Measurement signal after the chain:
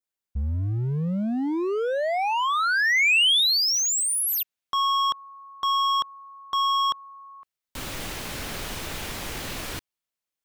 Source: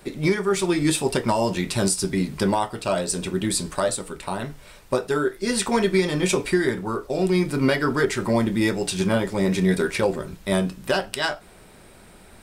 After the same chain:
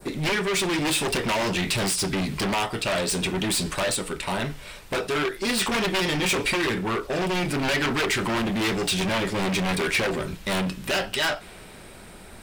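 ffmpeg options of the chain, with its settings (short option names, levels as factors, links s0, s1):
-af "aeval=exprs='0.668*(cos(1*acos(clip(val(0)/0.668,-1,1)))-cos(1*PI/2))+0.168*(cos(2*acos(clip(val(0)/0.668,-1,1)))-cos(2*PI/2))+0.0944*(cos(3*acos(clip(val(0)/0.668,-1,1)))-cos(3*PI/2))+0.299*(cos(7*acos(clip(val(0)/0.668,-1,1)))-cos(7*PI/2))':c=same,asoftclip=type=hard:threshold=0.106,adynamicequalizer=threshold=0.0126:dfrequency=2800:dqfactor=0.85:tfrequency=2800:tqfactor=0.85:attack=5:release=100:ratio=0.375:range=3.5:mode=boostabove:tftype=bell,volume=0.596"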